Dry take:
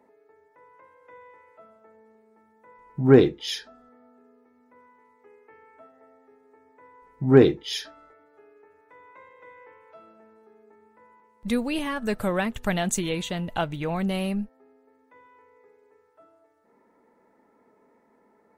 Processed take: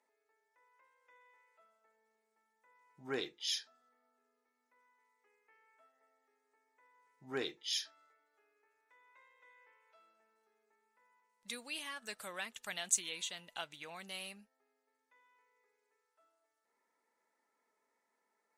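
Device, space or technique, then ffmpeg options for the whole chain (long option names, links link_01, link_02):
piezo pickup straight into a mixer: -af "lowpass=7800,aderivative"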